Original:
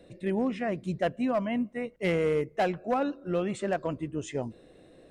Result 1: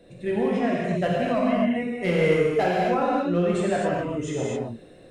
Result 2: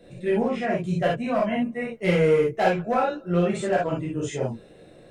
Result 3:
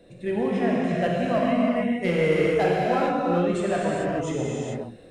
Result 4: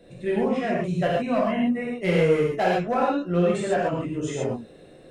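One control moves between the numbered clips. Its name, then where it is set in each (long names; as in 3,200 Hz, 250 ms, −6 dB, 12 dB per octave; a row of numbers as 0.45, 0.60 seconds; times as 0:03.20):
reverb whose tail is shaped and stops, gate: 290, 90, 470, 160 milliseconds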